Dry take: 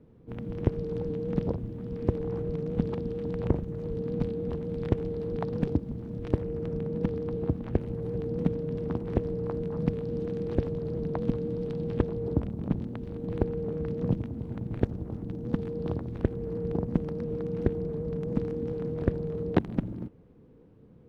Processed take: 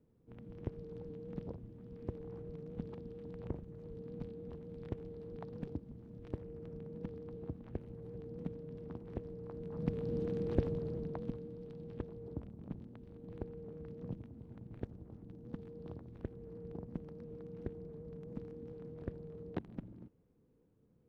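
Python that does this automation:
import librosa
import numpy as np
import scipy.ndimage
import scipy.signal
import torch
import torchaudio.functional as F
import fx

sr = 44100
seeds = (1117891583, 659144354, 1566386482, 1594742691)

y = fx.gain(x, sr, db=fx.line((9.49, -15.0), (10.07, -4.5), (10.72, -4.5), (11.52, -16.0)))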